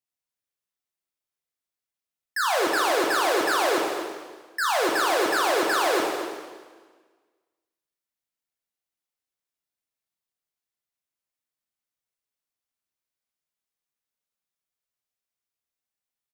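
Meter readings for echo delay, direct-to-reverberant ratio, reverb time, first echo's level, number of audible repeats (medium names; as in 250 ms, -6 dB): 238 ms, -1.0 dB, 1.5 s, -10.5 dB, 1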